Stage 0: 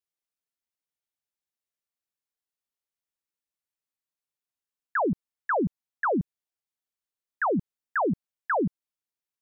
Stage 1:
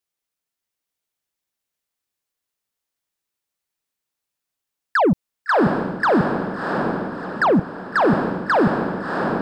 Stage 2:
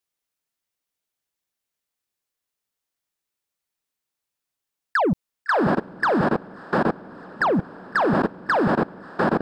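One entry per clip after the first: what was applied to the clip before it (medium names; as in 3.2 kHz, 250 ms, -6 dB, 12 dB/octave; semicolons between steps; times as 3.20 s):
dynamic bell 1.2 kHz, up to -3 dB, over -39 dBFS, Q 1.2; waveshaping leveller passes 1; echo that smears into a reverb 688 ms, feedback 46%, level -4 dB; trim +9 dB
level held to a coarse grid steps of 22 dB; trim +3 dB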